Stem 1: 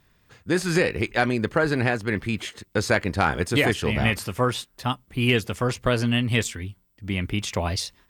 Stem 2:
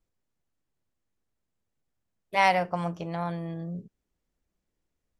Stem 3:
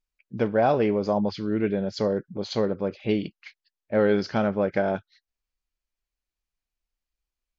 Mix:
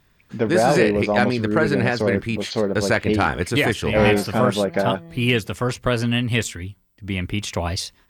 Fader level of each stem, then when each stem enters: +1.5 dB, -6.0 dB, +3.0 dB; 0.00 s, 1.60 s, 0.00 s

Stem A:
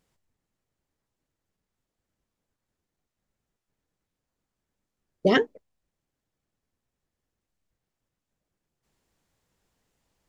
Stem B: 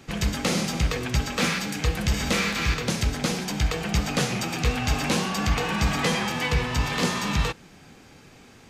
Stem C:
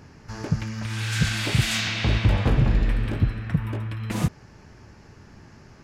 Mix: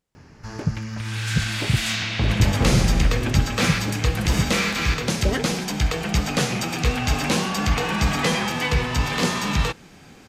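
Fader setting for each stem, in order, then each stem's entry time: -6.0 dB, +2.5 dB, +0.5 dB; 0.00 s, 2.20 s, 0.15 s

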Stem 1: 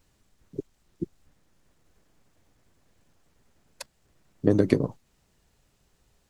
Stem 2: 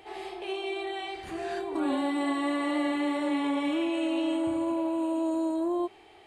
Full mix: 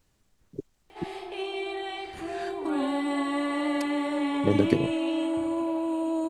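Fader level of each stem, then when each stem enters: -2.5 dB, +0.5 dB; 0.00 s, 0.90 s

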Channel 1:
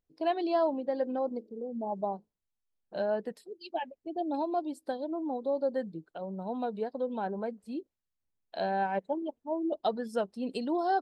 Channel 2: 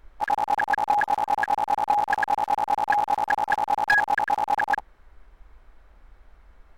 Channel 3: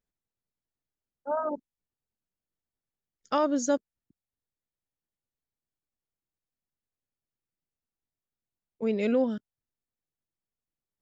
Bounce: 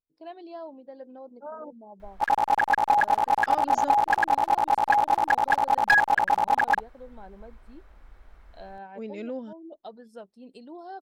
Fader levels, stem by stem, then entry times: -12.5 dB, +1.0 dB, -9.5 dB; 0.00 s, 2.00 s, 0.15 s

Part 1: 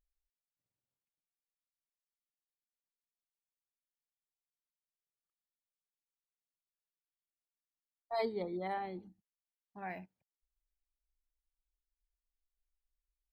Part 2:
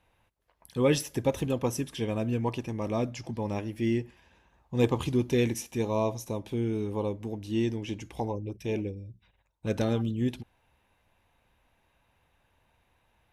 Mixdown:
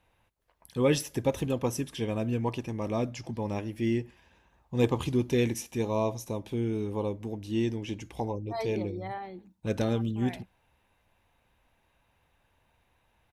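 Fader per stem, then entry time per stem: +0.5 dB, -0.5 dB; 0.40 s, 0.00 s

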